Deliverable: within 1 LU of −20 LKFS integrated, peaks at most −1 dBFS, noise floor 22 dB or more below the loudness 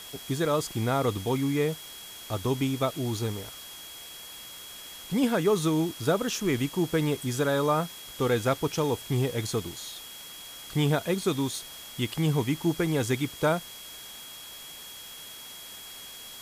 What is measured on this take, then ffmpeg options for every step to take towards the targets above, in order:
interfering tone 3,300 Hz; level of the tone −45 dBFS; background noise floor −44 dBFS; target noise floor −50 dBFS; integrated loudness −28.0 LKFS; sample peak −12.5 dBFS; target loudness −20.0 LKFS
→ -af "bandreject=frequency=3300:width=30"
-af "afftdn=noise_reduction=6:noise_floor=-44"
-af "volume=8dB"

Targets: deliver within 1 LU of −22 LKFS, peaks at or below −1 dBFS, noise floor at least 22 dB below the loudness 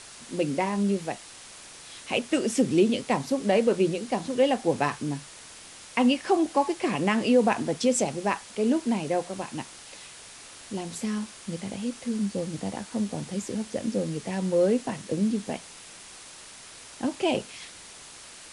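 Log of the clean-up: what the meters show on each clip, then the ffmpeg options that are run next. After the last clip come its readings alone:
background noise floor −46 dBFS; target noise floor −49 dBFS; integrated loudness −27.0 LKFS; sample peak −10.5 dBFS; target loudness −22.0 LKFS
→ -af "afftdn=noise_reduction=6:noise_floor=-46"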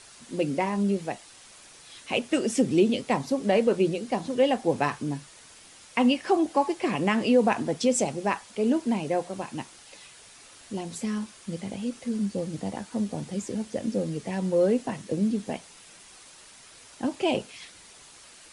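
background noise floor −51 dBFS; integrated loudness −27.0 LKFS; sample peak −10.5 dBFS; target loudness −22.0 LKFS
→ -af "volume=5dB"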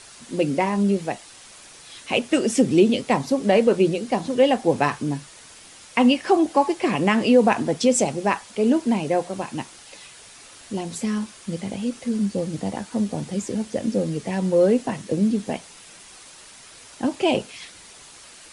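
integrated loudness −22.0 LKFS; sample peak −5.5 dBFS; background noise floor −46 dBFS

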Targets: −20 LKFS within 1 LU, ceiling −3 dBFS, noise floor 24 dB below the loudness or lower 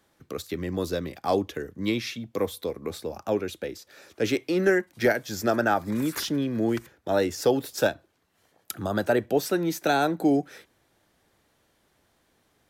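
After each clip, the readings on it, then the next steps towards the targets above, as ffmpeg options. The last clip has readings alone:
integrated loudness −27.0 LKFS; sample peak −11.5 dBFS; target loudness −20.0 LKFS
→ -af "volume=7dB"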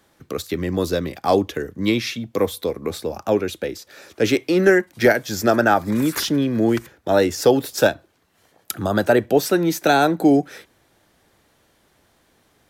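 integrated loudness −20.0 LKFS; sample peak −4.5 dBFS; background noise floor −61 dBFS

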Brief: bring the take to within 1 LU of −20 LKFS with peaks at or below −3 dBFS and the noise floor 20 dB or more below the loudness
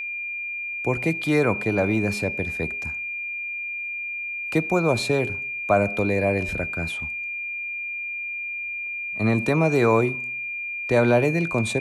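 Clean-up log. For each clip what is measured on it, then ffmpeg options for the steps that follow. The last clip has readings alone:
interfering tone 2,400 Hz; level of the tone −28 dBFS; integrated loudness −24.0 LKFS; sample peak −7.0 dBFS; target loudness −20.0 LKFS
→ -af "bandreject=frequency=2400:width=30"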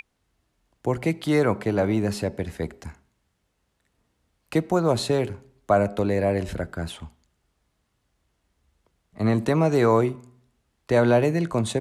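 interfering tone none found; integrated loudness −23.5 LKFS; sample peak −8.0 dBFS; target loudness −20.0 LKFS
→ -af "volume=3.5dB"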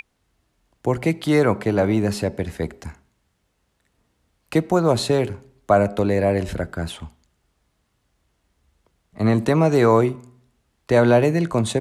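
integrated loudness −20.0 LKFS; sample peak −4.5 dBFS; background noise floor −70 dBFS

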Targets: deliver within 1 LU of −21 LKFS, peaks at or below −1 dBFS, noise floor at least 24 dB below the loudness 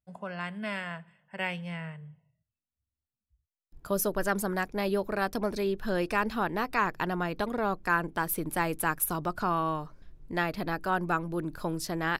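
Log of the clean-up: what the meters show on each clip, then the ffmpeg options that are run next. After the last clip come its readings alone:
integrated loudness −31.0 LKFS; sample peak −14.0 dBFS; target loudness −21.0 LKFS
→ -af "volume=10dB"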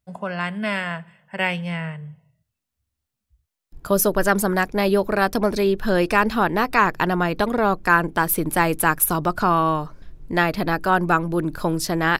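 integrated loudness −21.0 LKFS; sample peak −4.0 dBFS; background noise floor −83 dBFS

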